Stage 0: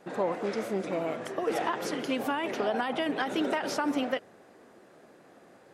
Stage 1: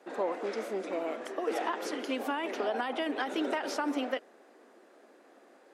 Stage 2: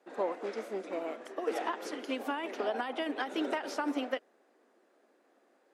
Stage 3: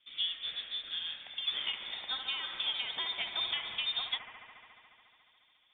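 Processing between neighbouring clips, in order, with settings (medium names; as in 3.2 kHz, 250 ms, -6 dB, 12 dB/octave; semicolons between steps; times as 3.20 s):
steep high-pass 240 Hz 36 dB/octave; treble shelf 11 kHz -4 dB; trim -2.5 dB
upward expansion 1.5:1, over -47 dBFS
feedback echo behind a high-pass 71 ms, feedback 85%, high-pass 1.9 kHz, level -6 dB; frequency inversion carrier 3.9 kHz; trim -2 dB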